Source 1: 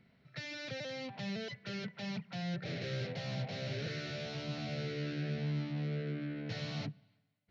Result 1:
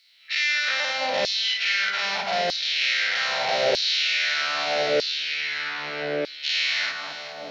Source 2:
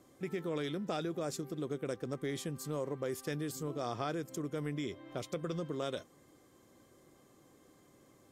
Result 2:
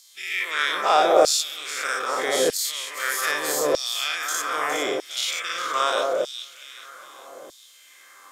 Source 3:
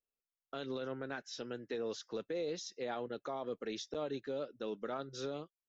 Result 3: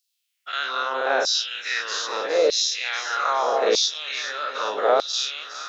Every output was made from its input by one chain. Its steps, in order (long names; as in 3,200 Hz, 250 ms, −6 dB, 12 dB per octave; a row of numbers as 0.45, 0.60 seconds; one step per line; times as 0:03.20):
every bin's largest magnitude spread in time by 120 ms
delay that swaps between a low-pass and a high-pass 206 ms, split 1,600 Hz, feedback 69%, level −6 dB
auto-filter high-pass saw down 0.8 Hz 510–4,600 Hz
loudness normalisation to −23 LKFS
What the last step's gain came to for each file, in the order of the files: +14.0, +13.0, +13.5 decibels